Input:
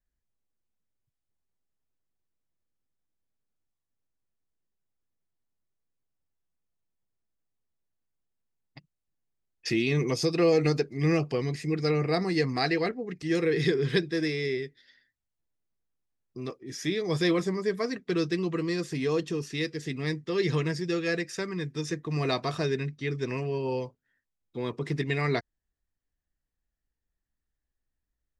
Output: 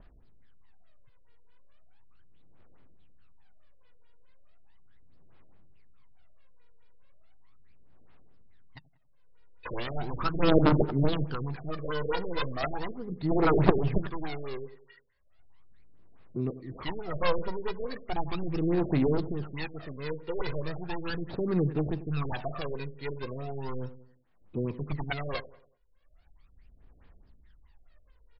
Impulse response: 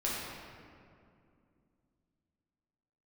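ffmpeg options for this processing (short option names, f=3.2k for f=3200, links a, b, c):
-filter_complex "[0:a]acrusher=samples=7:mix=1:aa=0.000001,aeval=exprs='0.237*(cos(1*acos(clip(val(0)/0.237,-1,1)))-cos(1*PI/2))+0.0422*(cos(2*acos(clip(val(0)/0.237,-1,1)))-cos(2*PI/2))+0.106*(cos(3*acos(clip(val(0)/0.237,-1,1)))-cos(3*PI/2))':c=same,adynamicequalizer=threshold=0.00141:dfrequency=2200:dqfactor=1.7:tfrequency=2200:tqfactor=1.7:attack=5:release=100:ratio=0.375:range=3:mode=cutabove:tftype=bell,acompressor=mode=upward:threshold=-54dB:ratio=2.5,asplit=2[a][b];[b]aecho=0:1:82|164|246:0.0794|0.0326|0.0134[c];[a][c]amix=inputs=2:normalize=0,aphaser=in_gain=1:out_gain=1:delay=2.1:decay=0.73:speed=0.37:type=sinusoidal,asplit=2[d][e];[e]adelay=94,lowpass=f=1.6k:p=1,volume=-15dB,asplit=2[f][g];[g]adelay=94,lowpass=f=1.6k:p=1,volume=0.44,asplit=2[h][i];[i]adelay=94,lowpass=f=1.6k:p=1,volume=0.44,asplit=2[j][k];[k]adelay=94,lowpass=f=1.6k:p=1,volume=0.44[l];[f][h][j][l]amix=inputs=4:normalize=0[m];[d][m]amix=inputs=2:normalize=0,afftfilt=real='re*lt(b*sr/1024,640*pow(5600/640,0.5+0.5*sin(2*PI*4.7*pts/sr)))':imag='im*lt(b*sr/1024,640*pow(5600/640,0.5+0.5*sin(2*PI*4.7*pts/sr)))':win_size=1024:overlap=0.75,volume=6dB"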